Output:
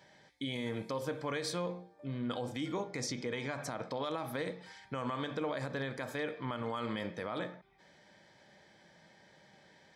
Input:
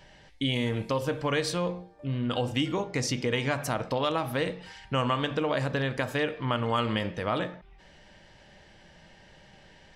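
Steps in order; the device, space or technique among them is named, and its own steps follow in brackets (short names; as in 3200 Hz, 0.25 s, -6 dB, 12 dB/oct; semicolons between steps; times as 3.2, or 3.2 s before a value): PA system with an anti-feedback notch (HPF 150 Hz 12 dB/oct; Butterworth band-stop 2800 Hz, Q 6.3; limiter -21 dBFS, peak gain reduction 7.5 dB); 3.07–3.95 LPF 8300 Hz 12 dB/oct; gain -5.5 dB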